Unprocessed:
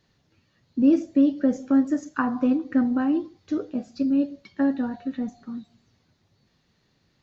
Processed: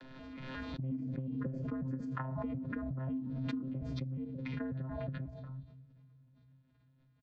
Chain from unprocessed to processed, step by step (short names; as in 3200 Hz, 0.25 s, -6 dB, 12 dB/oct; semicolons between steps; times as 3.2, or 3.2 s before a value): arpeggiated vocoder bare fifth, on C3, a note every 0.181 s; three-band isolator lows -15 dB, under 230 Hz, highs -20 dB, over 4200 Hz; comb 2.7 ms, depth 59%; compressor 8:1, threshold -30 dBFS, peak gain reduction 16 dB; frequency shift -130 Hz; on a send at -23 dB: reverb RT60 3.5 s, pre-delay 3 ms; on the sum: backwards sustainer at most 21 dB/s; gain -5.5 dB